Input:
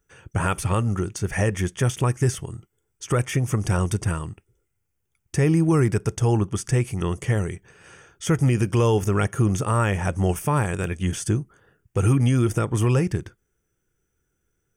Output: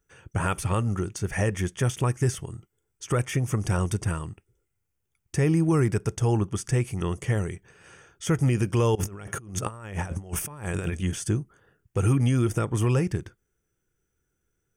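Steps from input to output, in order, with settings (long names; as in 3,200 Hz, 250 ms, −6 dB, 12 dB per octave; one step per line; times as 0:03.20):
0:08.95–0:11.01: compressor whose output falls as the input rises −28 dBFS, ratio −0.5
level −3 dB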